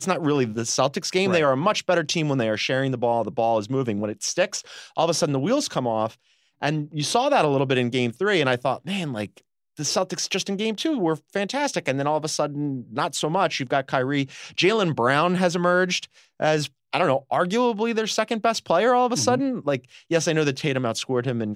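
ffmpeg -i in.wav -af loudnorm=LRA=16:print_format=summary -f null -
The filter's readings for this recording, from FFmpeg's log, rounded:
Input Integrated:    -23.2 LUFS
Input True Peak:      -5.4 dBTP
Input LRA:             3.0 LU
Input Threshold:     -33.3 LUFS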